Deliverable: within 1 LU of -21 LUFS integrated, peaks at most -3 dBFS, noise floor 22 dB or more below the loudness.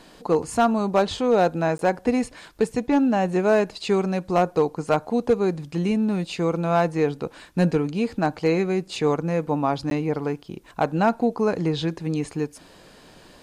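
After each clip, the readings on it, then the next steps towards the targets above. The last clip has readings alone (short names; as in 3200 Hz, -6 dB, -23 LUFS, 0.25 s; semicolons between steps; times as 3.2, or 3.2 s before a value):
clipped 0.3%; flat tops at -11.0 dBFS; dropouts 2; longest dropout 12 ms; loudness -23.5 LUFS; peak -11.0 dBFS; loudness target -21.0 LUFS
-> clip repair -11 dBFS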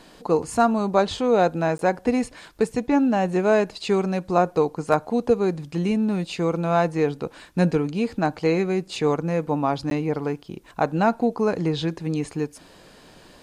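clipped 0.0%; dropouts 2; longest dropout 12 ms
-> interpolate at 1.78/9.9, 12 ms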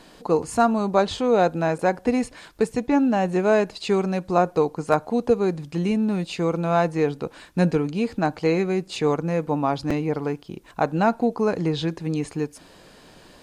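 dropouts 0; loudness -23.0 LUFS; peak -3.5 dBFS; loudness target -21.0 LUFS
-> gain +2 dB; limiter -3 dBFS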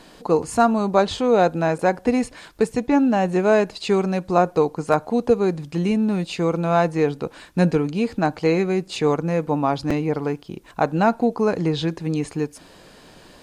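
loudness -21.0 LUFS; peak -3.0 dBFS; noise floor -48 dBFS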